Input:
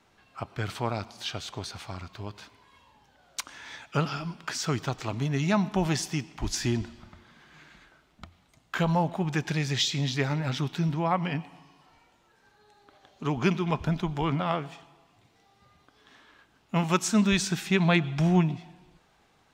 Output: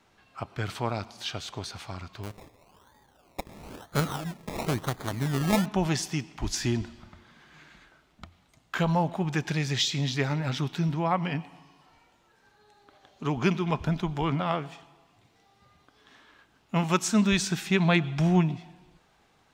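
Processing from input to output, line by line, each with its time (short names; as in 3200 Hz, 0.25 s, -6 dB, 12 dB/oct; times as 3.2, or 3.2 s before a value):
2.23–5.66 decimation with a swept rate 23×, swing 60% 1 Hz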